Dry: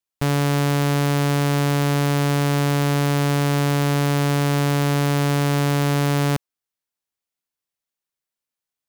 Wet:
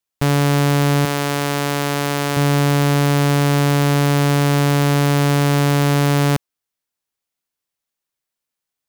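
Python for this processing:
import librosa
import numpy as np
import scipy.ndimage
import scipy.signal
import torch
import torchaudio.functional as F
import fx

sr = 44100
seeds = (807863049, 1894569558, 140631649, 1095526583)

y = fx.highpass(x, sr, hz=380.0, slope=6, at=(1.05, 2.37))
y = F.gain(torch.from_numpy(y), 4.0).numpy()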